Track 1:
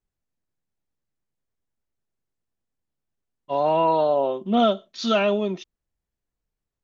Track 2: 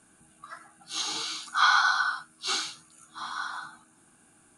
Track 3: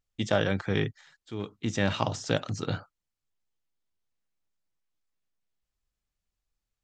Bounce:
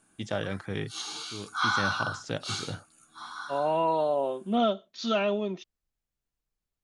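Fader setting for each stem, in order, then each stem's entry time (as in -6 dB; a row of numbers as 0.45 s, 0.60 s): -6.0 dB, -5.5 dB, -6.0 dB; 0.00 s, 0.00 s, 0.00 s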